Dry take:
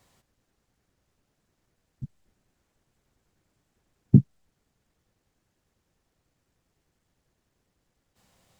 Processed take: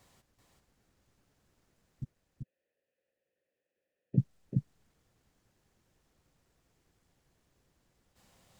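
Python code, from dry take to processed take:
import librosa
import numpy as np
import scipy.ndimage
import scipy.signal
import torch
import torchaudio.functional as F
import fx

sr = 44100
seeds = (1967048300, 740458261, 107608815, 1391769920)

y = fx.vowel_filter(x, sr, vowel='e', at=(2.03, 4.17), fade=0.02)
y = y + 10.0 ** (-3.5 / 20.0) * np.pad(y, (int(386 * sr / 1000.0), 0))[:len(y)]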